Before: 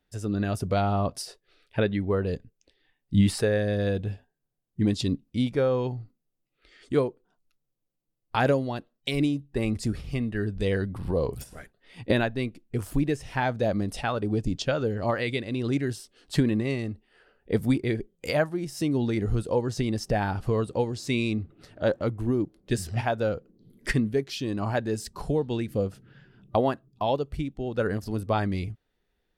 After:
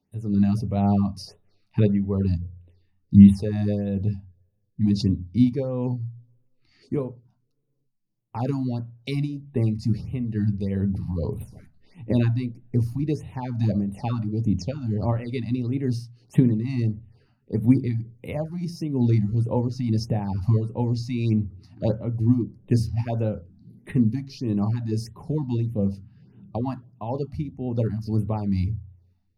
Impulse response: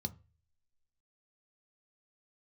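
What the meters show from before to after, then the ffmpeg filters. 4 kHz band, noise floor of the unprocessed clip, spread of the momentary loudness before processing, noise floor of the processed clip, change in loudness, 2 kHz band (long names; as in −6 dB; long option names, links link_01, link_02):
−6.5 dB, −78 dBFS, 8 LU, −70 dBFS, +3.5 dB, −12.0 dB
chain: -filter_complex "[0:a]tremolo=f=2.2:d=0.55[link_01];[1:a]atrim=start_sample=2205,asetrate=48510,aresample=44100[link_02];[link_01][link_02]afir=irnorm=-1:irlink=0,afftfilt=real='re*(1-between(b*sr/1024,410*pow(5800/410,0.5+0.5*sin(2*PI*1.6*pts/sr))/1.41,410*pow(5800/410,0.5+0.5*sin(2*PI*1.6*pts/sr))*1.41))':imag='im*(1-between(b*sr/1024,410*pow(5800/410,0.5+0.5*sin(2*PI*1.6*pts/sr))/1.41,410*pow(5800/410,0.5+0.5*sin(2*PI*1.6*pts/sr))*1.41))':win_size=1024:overlap=0.75,volume=-1.5dB"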